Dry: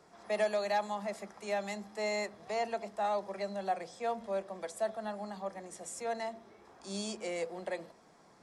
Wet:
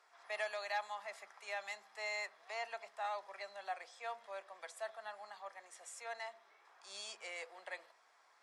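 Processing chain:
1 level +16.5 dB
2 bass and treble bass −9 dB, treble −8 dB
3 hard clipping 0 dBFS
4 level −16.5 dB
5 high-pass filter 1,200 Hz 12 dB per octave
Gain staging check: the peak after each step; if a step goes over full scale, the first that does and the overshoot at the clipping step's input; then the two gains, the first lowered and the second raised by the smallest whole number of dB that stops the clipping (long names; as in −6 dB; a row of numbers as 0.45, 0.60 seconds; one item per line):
−3.5, −4.0, −4.0, −20.5, −26.5 dBFS
no step passes full scale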